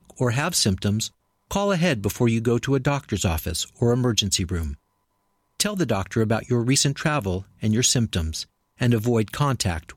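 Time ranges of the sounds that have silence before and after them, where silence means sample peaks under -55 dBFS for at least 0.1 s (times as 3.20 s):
1.50–4.77 s
5.59–8.46 s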